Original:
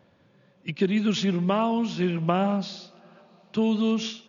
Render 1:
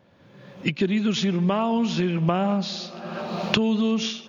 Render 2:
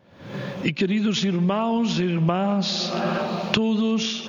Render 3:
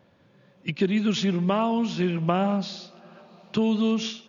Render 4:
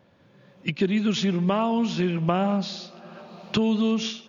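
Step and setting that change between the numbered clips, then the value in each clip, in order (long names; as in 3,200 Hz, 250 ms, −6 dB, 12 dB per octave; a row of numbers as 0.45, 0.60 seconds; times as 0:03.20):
camcorder AGC, rising by: 31, 83, 5.2, 13 dB per second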